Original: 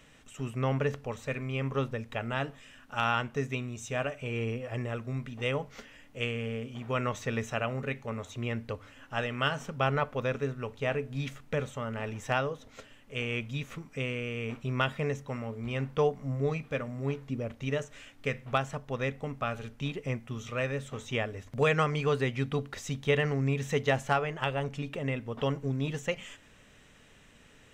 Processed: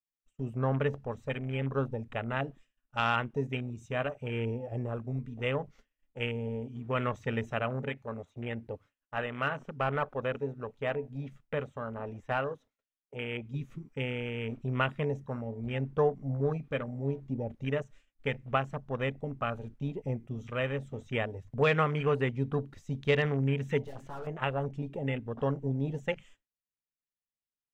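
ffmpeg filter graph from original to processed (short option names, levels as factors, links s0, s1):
-filter_complex "[0:a]asettb=1/sr,asplit=3[s0][s1][s2];[s0]atrim=end=7.894[s3];[s1]atrim=start=7.89:end=13.54,asetpts=PTS-STARTPTS,afade=t=in:d=0.004:c=qsin,afade=t=out:st=5.646:d=0.004:c=qsin,lowshelf=f=250:g=-6,acrossover=split=3200[s4][s5];[s5]acompressor=threshold=0.00158:ratio=4:attack=1:release=60[s6];[s4][s6]amix=inputs=2:normalize=0,volume=11.9,asoftclip=hard,volume=0.0841[s7];[s2]atrim=start=13.536[s8];[s3][s7]acrossfade=d=0.004:c1=hsin:c2=qsin[s9];[s9][s8]acrossfade=d=0.004:c1=qsin:c2=hsin,asettb=1/sr,asplit=3[s10][s11][s12];[s10]atrim=end=23.834[s13];[s11]atrim=start=23.83:end=24.27,asetpts=PTS-STARTPTS,afade=t=in:d=0.004:c=qsin,afade=t=out:st=0.436:d=0.004:c=qsin,equalizer=f=2000:w=0.46:g=6,aeval=exprs='(tanh(79.4*val(0)+0.65)-tanh(0.65))/79.4':c=same,bandreject=f=67.15:t=h:w=4,bandreject=f=134.3:t=h:w=4,bandreject=f=201.45:t=h:w=4,bandreject=f=268.6:t=h:w=4,bandreject=f=335.75:t=h:w=4,bandreject=f=402.9:t=h:w=4,bandreject=f=470.05:t=h:w=4,bandreject=f=537.2:t=h:w=4,bandreject=f=604.35:t=h:w=4,bandreject=f=671.5:t=h:w=4,bandreject=f=738.65:t=h:w=4,bandreject=f=805.8:t=h:w=4,bandreject=f=872.95:t=h:w=4,bandreject=f=940.1:t=h:w=4,bandreject=f=1007.25:t=h:w=4,bandreject=f=1074.4:t=h:w=4,bandreject=f=1141.55:t=h:w=4,bandreject=f=1208.7:t=h:w=4,bandreject=f=1275.85:t=h:w=4,bandreject=f=1343:t=h:w=4,bandreject=f=1410.15:t=h:w=4,bandreject=f=1477.3:t=h:w=4,bandreject=f=1544.45:t=h:w=4,bandreject=f=1611.6:t=h:w=4,bandreject=f=1678.75:t=h:w=4,bandreject=f=1745.9:t=h:w=4,bandreject=f=1813.05:t=h:w=4,bandreject=f=1880.2:t=h:w=4,bandreject=f=1947.35:t=h:w=4,bandreject=f=2014.5:t=h:w=4,bandreject=f=2081.65:t=h:w=4,bandreject=f=2148.8:t=h:w=4,bandreject=f=2215.95:t=h:w=4,bandreject=f=2283.1:t=h:w=4,bandreject=f=2350.25:t=h:w=4,bandreject=f=2417.4:t=h:w=4,bandreject=f=2484.55:t=h:w=4,bandreject=f=2551.7:t=h:w=4,bandreject=f=2618.85:t=h:w=4[s14];[s12]atrim=start=24.266[s15];[s13][s14]acrossfade=d=0.004:c1=hsin:c2=qsin[s16];[s16][s15]acrossfade=d=0.004:c1=qsin:c2=hsin,afwtdn=0.0126,agate=range=0.0224:threshold=0.00398:ratio=3:detection=peak"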